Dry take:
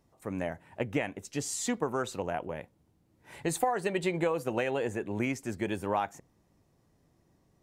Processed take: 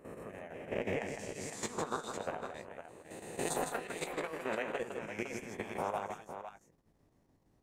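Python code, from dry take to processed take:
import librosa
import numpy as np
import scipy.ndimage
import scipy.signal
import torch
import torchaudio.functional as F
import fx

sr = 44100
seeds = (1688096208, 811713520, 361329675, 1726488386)

y = fx.spec_swells(x, sr, rise_s=1.33)
y = fx.high_shelf(y, sr, hz=2600.0, db=-4.0)
y = fx.hpss(y, sr, part='harmonic', gain_db=-16)
y = fx.dynamic_eq(y, sr, hz=310.0, q=5.0, threshold_db=-54.0, ratio=4.0, max_db=-7)
y = fx.level_steps(y, sr, step_db=12)
y = fx.chopper(y, sr, hz=5.9, depth_pct=60, duty_pct=85)
y = fx.doubler(y, sr, ms=19.0, db=-11.0)
y = fx.echo_multitap(y, sr, ms=(157, 507), db=(-6.0, -9.0))
y = F.gain(torch.from_numpy(y), 1.0).numpy()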